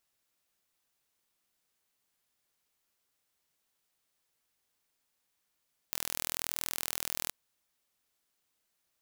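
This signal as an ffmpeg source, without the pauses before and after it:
-f lavfi -i "aevalsrc='0.473*eq(mod(n,1076),0)':d=1.39:s=44100"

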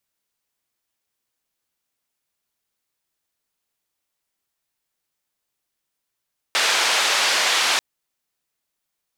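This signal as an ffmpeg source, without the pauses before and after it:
-f lavfi -i "anoisesrc=c=white:d=1.24:r=44100:seed=1,highpass=f=630,lowpass=f=4600,volume=-7.5dB"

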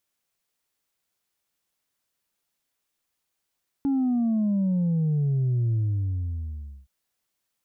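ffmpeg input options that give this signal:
-f lavfi -i "aevalsrc='0.0891*clip((3.02-t)/1.14,0,1)*tanh(1.19*sin(2*PI*280*3.02/log(65/280)*(exp(log(65/280)*t/3.02)-1)))/tanh(1.19)':d=3.02:s=44100"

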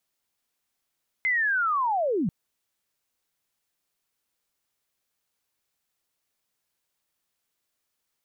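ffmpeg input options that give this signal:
-f lavfi -i "aevalsrc='pow(10,(-21-1.5*t/1.04)/20)*sin(2*PI*(2100*t-1950*t*t/(2*1.04)))':d=1.04:s=44100"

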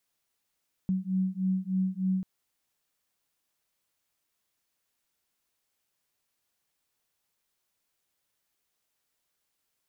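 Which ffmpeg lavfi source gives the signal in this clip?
-f lavfi -i "aevalsrc='0.0355*(sin(2*PI*186*t)+sin(2*PI*189.3*t))':d=1.34:s=44100"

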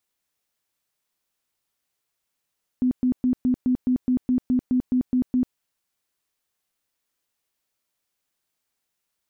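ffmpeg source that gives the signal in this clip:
-f lavfi -i "aevalsrc='0.141*sin(2*PI*252*mod(t,0.21))*lt(mod(t,0.21),23/252)':d=2.73:s=44100"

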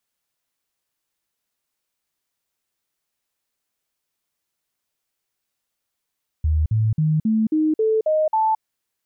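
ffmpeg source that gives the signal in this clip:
-f lavfi -i "aevalsrc='0.168*clip(min(mod(t,0.27),0.22-mod(t,0.27))/0.005,0,1)*sin(2*PI*77.6*pow(2,floor(t/0.27)/2)*mod(t,0.27))':d=2.16:s=44100"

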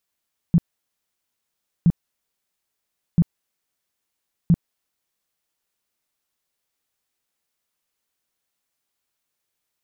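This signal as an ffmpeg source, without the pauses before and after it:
-f lavfi -i "aevalsrc='0.299*sin(2*PI*169*mod(t,1.32))*lt(mod(t,1.32),7/169)':d=5.28:s=44100"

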